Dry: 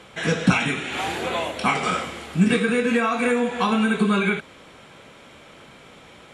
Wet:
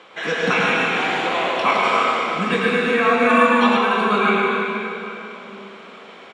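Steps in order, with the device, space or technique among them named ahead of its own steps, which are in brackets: station announcement (band-pass 350–4500 Hz; peaking EQ 1.1 kHz +5 dB 0.2 oct; loudspeakers at several distances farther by 37 m -5 dB, 51 m -5 dB; reverberation RT60 3.4 s, pre-delay 109 ms, DRR 0 dB); 3.29–3.77 s: comb 3.4 ms, depth 95%; trim +1 dB

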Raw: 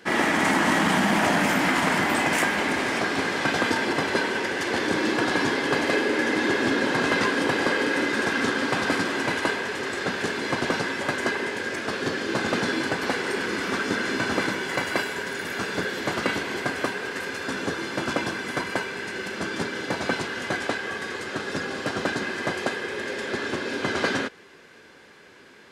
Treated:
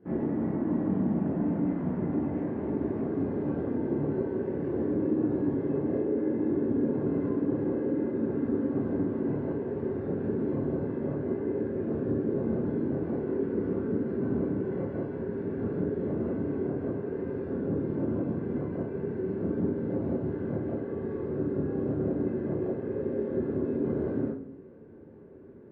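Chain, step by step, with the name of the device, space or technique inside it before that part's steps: television next door (compression, threshold -28 dBFS, peak gain reduction 10 dB; low-pass 300 Hz 12 dB/octave; reverberation RT60 0.50 s, pre-delay 21 ms, DRR -8 dB)

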